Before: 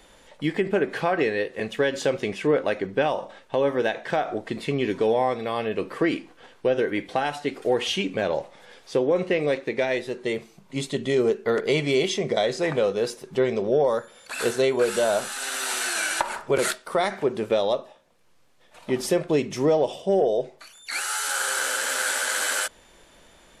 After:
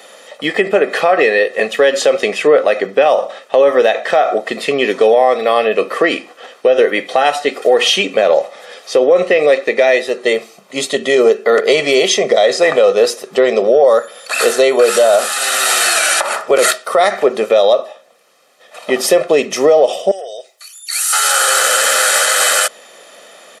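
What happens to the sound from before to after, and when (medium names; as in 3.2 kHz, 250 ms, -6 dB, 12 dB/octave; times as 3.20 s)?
20.11–21.13 s: differentiator
whole clip: high-pass 260 Hz 24 dB/octave; comb 1.6 ms, depth 63%; loudness maximiser +14.5 dB; trim -1 dB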